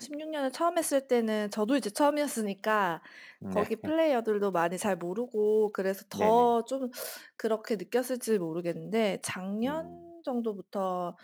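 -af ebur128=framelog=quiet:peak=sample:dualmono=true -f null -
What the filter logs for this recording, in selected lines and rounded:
Integrated loudness:
  I:         -26.9 LUFS
  Threshold: -37.1 LUFS
Loudness range:
  LRA:         4.1 LU
  Threshold: -46.8 LUFS
  LRA low:   -29.3 LUFS
  LRA high:  -25.1 LUFS
Sample peak:
  Peak:      -12.6 dBFS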